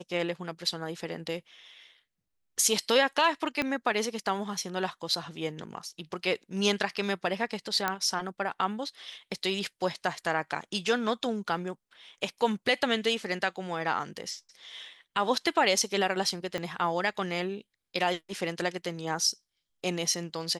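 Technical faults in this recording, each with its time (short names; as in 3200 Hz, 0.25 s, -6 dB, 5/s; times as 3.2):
3.62 pop -15 dBFS
7.88 pop -12 dBFS
16.58 pop -19 dBFS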